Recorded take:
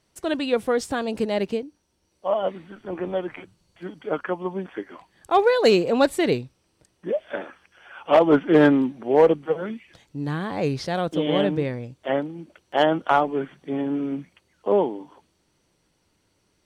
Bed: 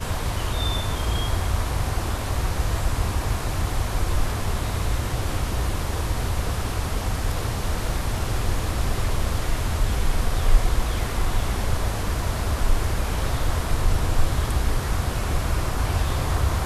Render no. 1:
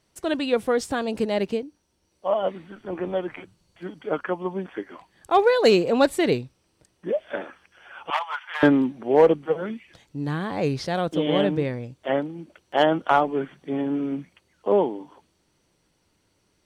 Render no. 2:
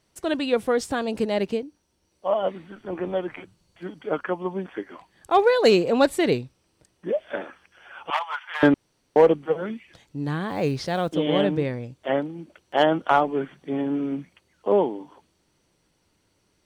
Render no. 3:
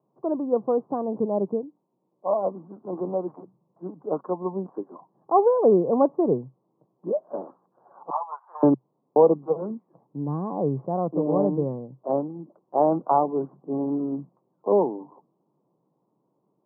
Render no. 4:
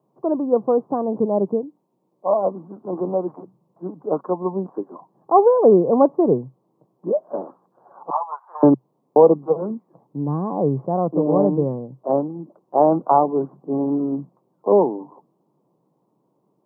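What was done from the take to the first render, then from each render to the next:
8.10–8.63 s: elliptic high-pass 910 Hz, stop band 70 dB
8.74–9.16 s: room tone; 10.48–11.13 s: block-companded coder 7-bit
Chebyshev band-pass 130–1100 Hz, order 5
trim +5 dB; peak limiter -2 dBFS, peak gain reduction 1 dB

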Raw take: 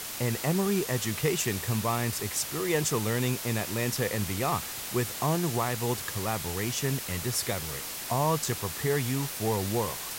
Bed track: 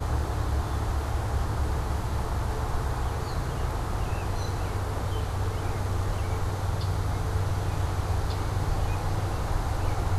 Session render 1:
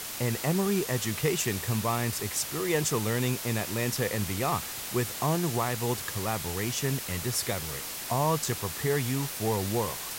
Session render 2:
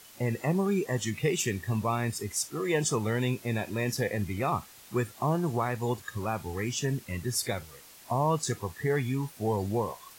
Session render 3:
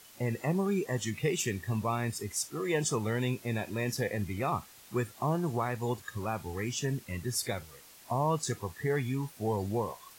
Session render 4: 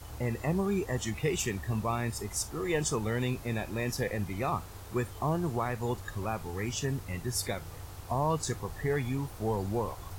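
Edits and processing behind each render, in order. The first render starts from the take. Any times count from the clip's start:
no audible change
noise print and reduce 15 dB
trim -2.5 dB
add bed track -17 dB

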